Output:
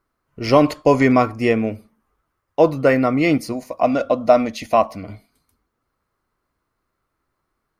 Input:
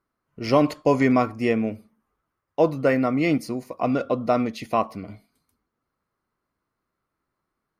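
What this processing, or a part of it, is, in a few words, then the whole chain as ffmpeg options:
low shelf boost with a cut just above: -filter_complex "[0:a]asettb=1/sr,asplit=3[a][b][c];[a]atrim=end=3.524[d];[b]atrim=start=3.52:end=5.04,asetpts=PTS-STARTPTS,afade=t=in:d=0.004:c=qsin,afade=t=out:st=1.516:d=0.004:c=qsin,equalizer=f=125:t=o:w=0.33:g=-10,equalizer=f=400:t=o:w=0.33:g=-10,equalizer=f=630:t=o:w=0.33:g=6,equalizer=f=1.25k:t=o:w=0.33:g=-3,equalizer=f=6.3k:t=o:w=0.33:g=4[e];[c]atrim=start=5.036[f];[d][e]acrossfade=d=0.004:c1=hsin:c2=qsin[g];[g][f]acrossfade=d=0.004:c1=qsin:c2=hsin,lowshelf=f=61:g=7.5,equalizer=f=190:t=o:w=1:g=-4,volume=5.5dB"

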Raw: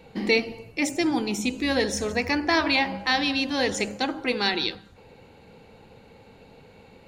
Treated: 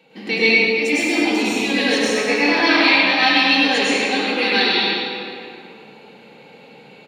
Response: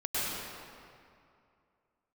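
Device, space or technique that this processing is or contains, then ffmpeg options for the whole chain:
PA in a hall: -filter_complex "[0:a]highpass=f=160:w=0.5412,highpass=f=160:w=1.3066,equalizer=f=2.9k:t=o:w=1.2:g=8,aecho=1:1:99:0.422[a];[1:a]atrim=start_sample=2205[b];[a][b]afir=irnorm=-1:irlink=0,volume=-3.5dB"

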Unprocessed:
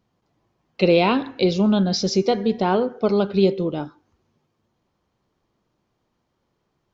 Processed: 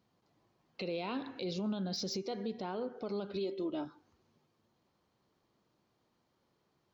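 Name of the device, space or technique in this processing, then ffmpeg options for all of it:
broadcast voice chain: -filter_complex "[0:a]asettb=1/sr,asplit=3[a][b][c];[a]atrim=end=3.334[d];[b]atrim=start=3.33:end=3.85,asetpts=PTS-STARTPTS,afade=t=in:d=0.004:c=qsin,afade=t=out:st=0.516:d=0.004:c=qsin,aecho=1:1:3.1:0.74,atrim=end_sample=22932[e];[c]atrim=start=3.846[f];[d][e]acrossfade=d=0.004:c1=hsin:c2=qsin[g];[g][f]acrossfade=d=0.004:c1=qsin:c2=hsin,highpass=f=110:p=1,deesser=0.55,acompressor=threshold=-30dB:ratio=4,equalizer=f=4.3k:t=o:w=0.37:g=4,alimiter=level_in=1dB:limit=-24dB:level=0:latency=1:release=70,volume=-1dB,volume=-3.5dB"

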